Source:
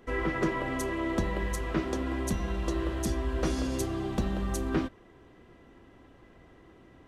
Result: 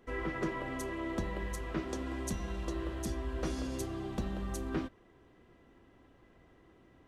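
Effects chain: 1.89–2.65 s: peaking EQ 6.9 kHz +4.5 dB 1.5 oct; trim -6.5 dB

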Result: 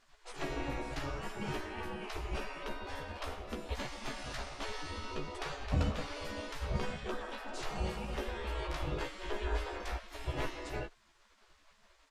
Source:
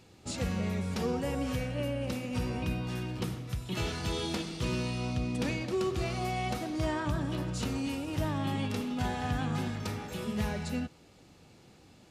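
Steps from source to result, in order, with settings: spectral gate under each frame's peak -20 dB weak; tilt EQ -4.5 dB/octave; doubling 14 ms -4.5 dB; trim +5 dB

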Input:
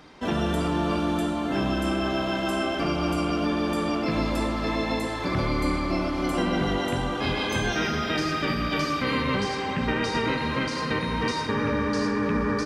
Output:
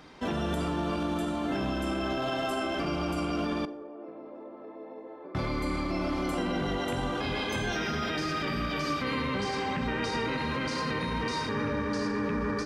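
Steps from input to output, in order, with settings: 2.17–2.62 s: comb 7.5 ms, depth 77%; peak limiter -21.5 dBFS, peak gain reduction 7.5 dB; 3.65–5.35 s: ladder band-pass 500 Hz, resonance 40%; plate-style reverb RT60 0.75 s, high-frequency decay 0.75×, DRR 15 dB; trim -1.5 dB

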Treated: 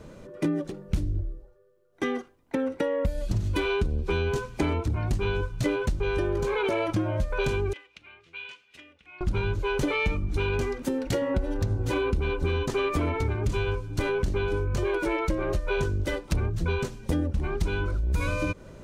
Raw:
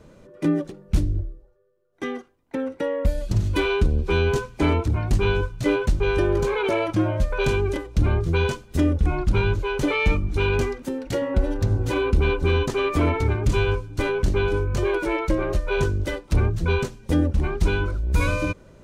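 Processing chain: compression 6:1, threshold -27 dBFS, peak gain reduction 12.5 dB; 7.73–9.21 s: band-pass filter 2.6 kHz, Q 3.4; trim +3.5 dB

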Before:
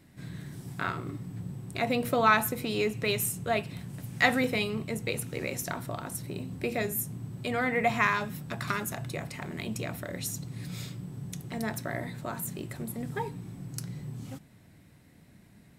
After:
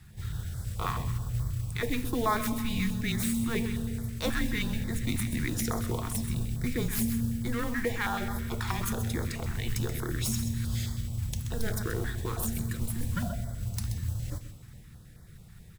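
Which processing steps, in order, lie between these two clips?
tracing distortion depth 0.072 ms; Schroeder reverb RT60 2.4 s, combs from 31 ms, DRR 13 dB; gain riding within 3 dB 0.5 s; on a send: delay 129 ms -10 dB; on the sum: modulation noise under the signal 18 dB; bass shelf 90 Hz +8.5 dB; frequency shift -230 Hz; in parallel at -2 dB: peak limiter -22.5 dBFS, peak gain reduction 11 dB; on the sum: step-sequenced notch 9.3 Hz 530–2700 Hz; trim -4 dB

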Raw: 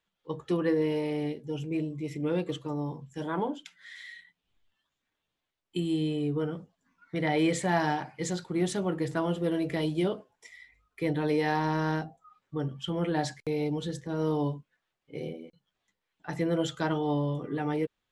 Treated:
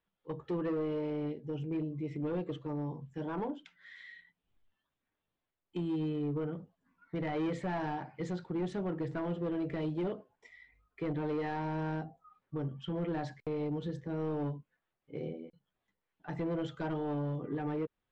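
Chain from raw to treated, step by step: in parallel at -0.5 dB: compression, threshold -35 dBFS, peak gain reduction 13.5 dB; on the sum: hard clipper -23 dBFS, distortion -13 dB; tape spacing loss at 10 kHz 27 dB; trim -6 dB

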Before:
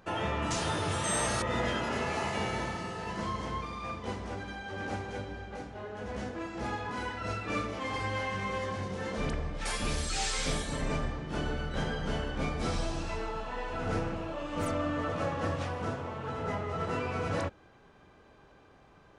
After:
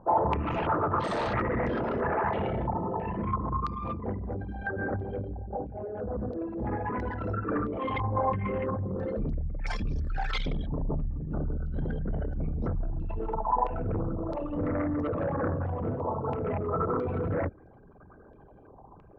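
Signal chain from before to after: resonances exaggerated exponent 3; sine folder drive 6 dB, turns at -20 dBFS; 0.42–1.34 s: overdrive pedal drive 16 dB, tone 1.7 kHz, clips at -19.5 dBFS; step-sequenced low-pass 3 Hz 960–5500 Hz; trim -5 dB

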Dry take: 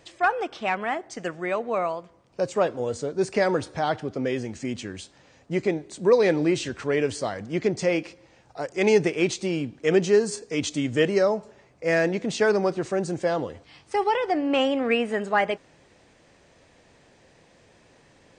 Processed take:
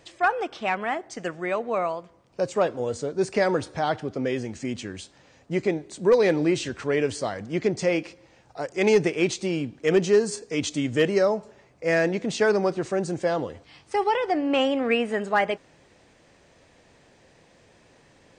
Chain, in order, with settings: overload inside the chain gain 11 dB

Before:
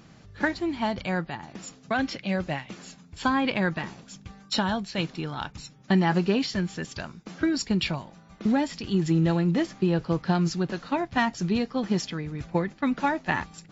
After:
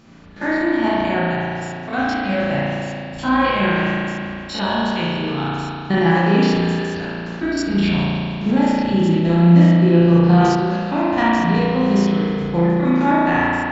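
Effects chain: spectrogram pixelated in time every 50 ms; spring tank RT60 2.5 s, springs 35 ms, chirp 40 ms, DRR -7.5 dB; decay stretcher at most 35 dB/s; trim +2.5 dB

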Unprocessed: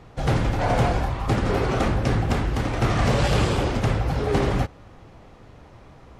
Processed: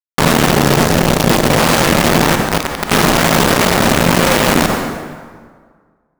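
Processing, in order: median filter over 15 samples; 0.52–1.58 s: Chebyshev band-stop 490–2600 Hz, order 5; compression 6:1, threshold -24 dBFS, peak gain reduction 8 dB; 2.35–2.91 s: feedback comb 52 Hz, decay 0.87 s, harmonics all, mix 90%; hard clipper -31.5 dBFS, distortion -7 dB; frequency shift +110 Hz; bit crusher 5-bit; plate-style reverb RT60 1.7 s, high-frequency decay 0.65×, DRR 9.5 dB; loudness maximiser +30 dB; trim -1 dB

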